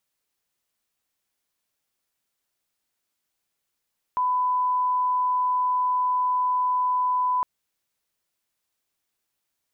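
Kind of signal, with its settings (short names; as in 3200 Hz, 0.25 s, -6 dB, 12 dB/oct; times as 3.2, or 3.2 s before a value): line-up tone -20 dBFS 3.26 s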